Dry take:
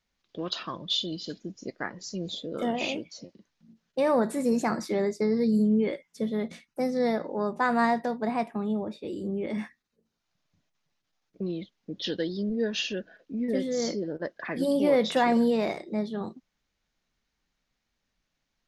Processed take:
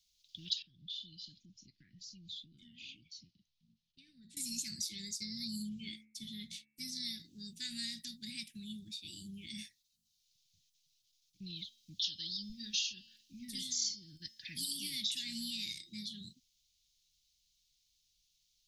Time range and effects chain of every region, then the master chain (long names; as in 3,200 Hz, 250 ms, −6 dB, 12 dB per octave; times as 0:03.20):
0:00.62–0:04.37: downward compressor 3 to 1, threshold −39 dBFS + head-to-tape spacing loss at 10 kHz 31 dB
0:05.69–0:06.88: downward expander −51 dBFS + bass and treble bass 0 dB, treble −6 dB + hum removal 72.54 Hz, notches 38
0:11.56–0:15.02: bass and treble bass 0 dB, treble +4 dB + hum removal 225.2 Hz, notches 23
whole clip: inverse Chebyshev band-stop filter 460–1,200 Hz, stop band 70 dB; low shelf with overshoot 290 Hz −14 dB, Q 1.5; downward compressor 2.5 to 1, threshold −48 dBFS; level +10 dB